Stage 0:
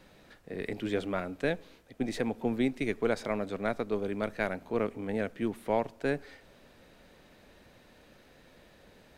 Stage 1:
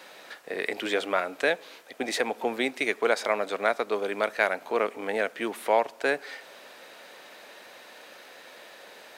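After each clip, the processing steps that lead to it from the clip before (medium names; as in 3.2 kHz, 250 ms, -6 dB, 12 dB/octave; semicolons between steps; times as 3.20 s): high-pass 600 Hz 12 dB/octave; in parallel at -1 dB: compression, threshold -43 dBFS, peak gain reduction 16.5 dB; on the sum: trim +8 dB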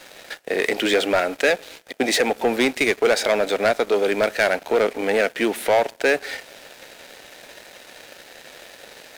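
peaking EQ 1.1 kHz -12 dB 0.41 oct; waveshaping leveller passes 3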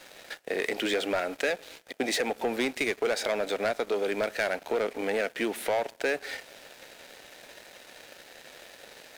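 compression 2:1, threshold -21 dBFS, peak gain reduction 4.5 dB; trim -6 dB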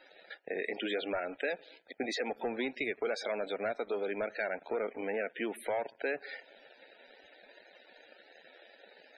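loudest bins only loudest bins 64; trim -6 dB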